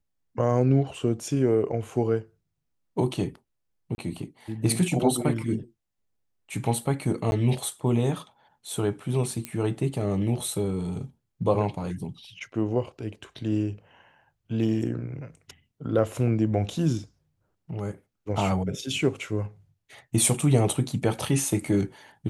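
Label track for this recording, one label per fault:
3.950000	3.980000	dropout 31 ms
7.310000	7.320000	dropout 11 ms
9.450000	9.450000	pop -15 dBFS

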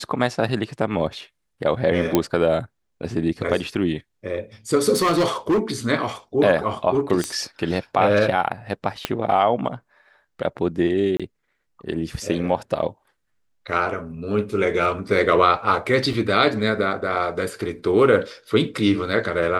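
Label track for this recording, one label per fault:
2.150000	2.150000	pop -3 dBFS
4.930000	5.600000	clipped -15 dBFS
7.240000	7.240000	pop -10 dBFS
9.050000	9.050000	pop -6 dBFS
11.170000	11.200000	dropout 26 ms
16.130000	16.130000	dropout 2.7 ms

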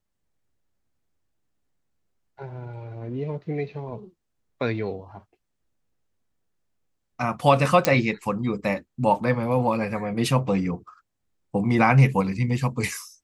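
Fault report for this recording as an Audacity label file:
7.850000	7.850000	pop -3 dBFS

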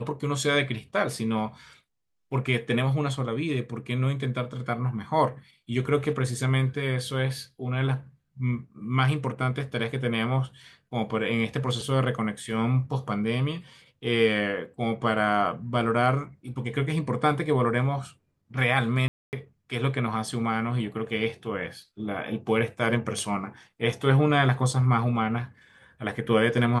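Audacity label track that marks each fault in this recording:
19.080000	19.330000	dropout 249 ms

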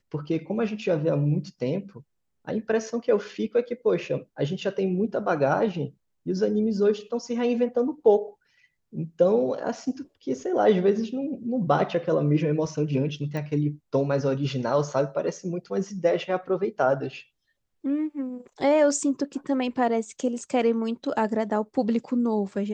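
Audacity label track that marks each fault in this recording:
13.370000	13.370000	pop -20 dBFS

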